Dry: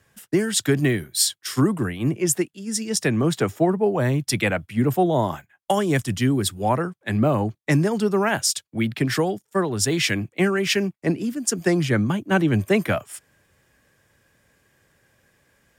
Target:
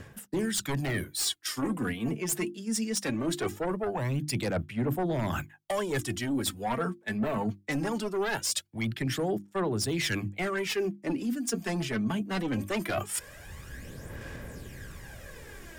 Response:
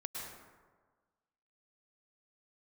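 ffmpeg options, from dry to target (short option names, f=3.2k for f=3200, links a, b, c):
-filter_complex "[0:a]bandreject=f=50:t=h:w=6,bandreject=f=100:t=h:w=6,bandreject=f=150:t=h:w=6,bandreject=f=200:t=h:w=6,bandreject=f=250:t=h:w=6,bandreject=f=300:t=h:w=6,bandreject=f=350:t=h:w=6,asubboost=boost=2.5:cutoff=61,aeval=exprs='0.447*(cos(1*acos(clip(val(0)/0.447,-1,1)))-cos(1*PI/2))+0.2*(cos(5*acos(clip(val(0)/0.447,-1,1)))-cos(5*PI/2))':c=same,acrossover=split=450|910[a][b][c];[a]acompressor=mode=upward:threshold=-43dB:ratio=2.5[d];[d][b][c]amix=inputs=3:normalize=0,aphaser=in_gain=1:out_gain=1:delay=4.6:decay=0.54:speed=0.21:type=sinusoidal,areverse,acompressor=threshold=-35dB:ratio=4,areverse,volume=2.5dB"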